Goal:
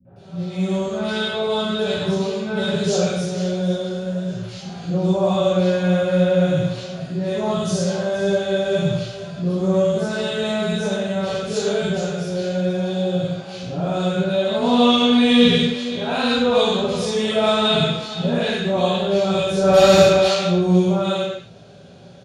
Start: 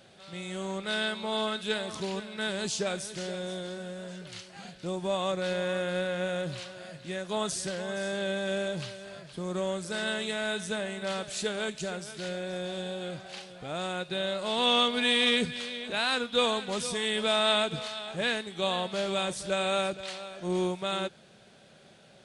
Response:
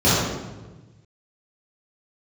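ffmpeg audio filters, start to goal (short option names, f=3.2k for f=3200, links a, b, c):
-filter_complex "[0:a]asplit=3[a][b][c];[a]afade=t=out:st=19.56:d=0.02[d];[b]aeval=exprs='0.119*sin(PI/2*2.51*val(0)/0.119)':c=same,afade=t=in:st=19.56:d=0.02,afade=t=out:st=20.27:d=0.02[e];[c]afade=t=in:st=20.27:d=0.02[f];[d][e][f]amix=inputs=3:normalize=0,acrossover=split=260|1500[g][h][i];[h]adelay=50[j];[i]adelay=160[k];[g][j][k]amix=inputs=3:normalize=0[l];[1:a]atrim=start_sample=2205,afade=t=out:st=0.32:d=0.01,atrim=end_sample=14553[m];[l][m]afir=irnorm=-1:irlink=0,volume=-14dB"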